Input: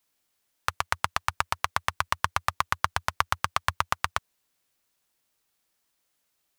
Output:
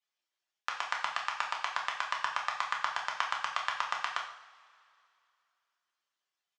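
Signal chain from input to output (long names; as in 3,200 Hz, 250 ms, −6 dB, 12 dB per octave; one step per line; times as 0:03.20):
harmonic-percussive split with one part muted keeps percussive
loudspeaker in its box 450–6,600 Hz, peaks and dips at 470 Hz −4 dB, 1,700 Hz +3 dB, 3,200 Hz +3 dB
double-tracking delay 28 ms −12.5 dB
coupled-rooms reverb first 0.57 s, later 2.7 s, from −20 dB, DRR −0.5 dB
level −9 dB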